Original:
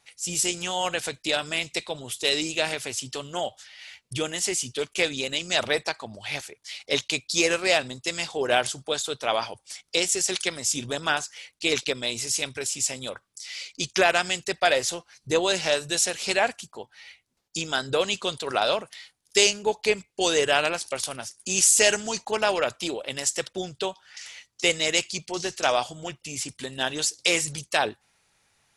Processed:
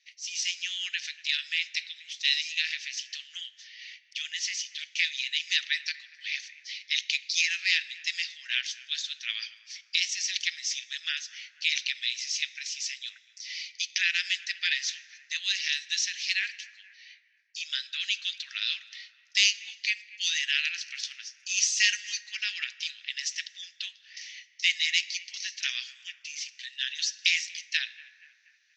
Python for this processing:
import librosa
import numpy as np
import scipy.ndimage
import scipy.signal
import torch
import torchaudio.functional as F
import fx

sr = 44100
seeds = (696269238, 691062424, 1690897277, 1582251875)

y = scipy.signal.sosfilt(scipy.signal.cheby1(4, 1.0, [1800.0, 6100.0], 'bandpass', fs=sr, output='sos'), x)
y = fx.echo_bbd(y, sr, ms=238, stages=4096, feedback_pct=51, wet_db=-19.5)
y = fx.rev_plate(y, sr, seeds[0], rt60_s=2.8, hf_ratio=0.4, predelay_ms=0, drr_db=16.0)
y = fx.detune_double(y, sr, cents=fx.line((16.95, 24.0), (17.61, 13.0)), at=(16.95, 17.61), fade=0.02)